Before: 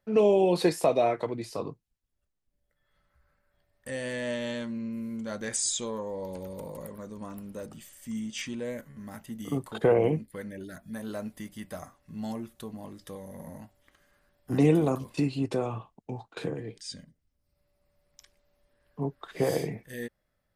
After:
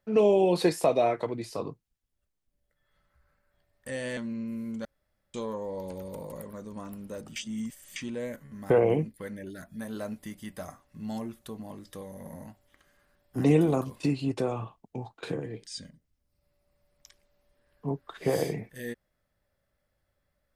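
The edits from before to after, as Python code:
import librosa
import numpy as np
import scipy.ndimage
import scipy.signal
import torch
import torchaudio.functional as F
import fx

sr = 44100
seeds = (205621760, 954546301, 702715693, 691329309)

y = fx.edit(x, sr, fx.cut(start_s=4.17, length_s=0.45),
    fx.room_tone_fill(start_s=5.3, length_s=0.49),
    fx.reverse_span(start_s=7.81, length_s=0.6),
    fx.cut(start_s=9.15, length_s=0.69), tone=tone)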